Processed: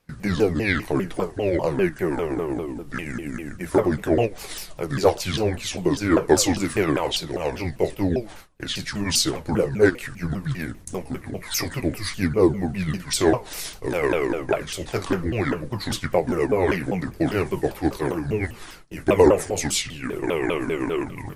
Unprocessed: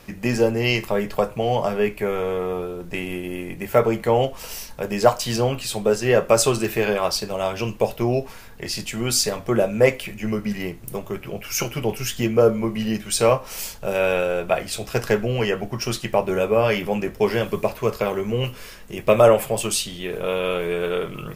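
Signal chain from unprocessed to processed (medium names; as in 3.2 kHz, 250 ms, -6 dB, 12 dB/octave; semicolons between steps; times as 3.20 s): sawtooth pitch modulation -8.5 st, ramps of 199 ms; gate with hold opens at -30 dBFS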